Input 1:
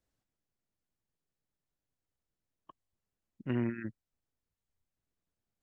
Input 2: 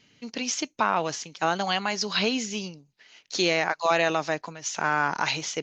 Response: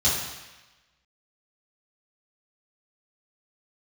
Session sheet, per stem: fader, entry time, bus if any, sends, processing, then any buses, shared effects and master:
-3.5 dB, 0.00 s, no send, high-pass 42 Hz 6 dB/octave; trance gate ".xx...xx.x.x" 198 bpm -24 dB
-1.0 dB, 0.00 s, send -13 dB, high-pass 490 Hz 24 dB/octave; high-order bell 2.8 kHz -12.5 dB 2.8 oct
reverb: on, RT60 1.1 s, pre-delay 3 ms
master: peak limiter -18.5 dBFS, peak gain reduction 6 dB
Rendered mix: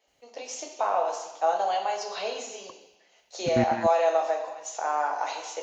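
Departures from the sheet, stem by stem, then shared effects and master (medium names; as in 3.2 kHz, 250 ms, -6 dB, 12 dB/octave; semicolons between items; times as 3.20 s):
stem 1 -3.5 dB -> +7.5 dB; master: missing peak limiter -18.5 dBFS, peak gain reduction 6 dB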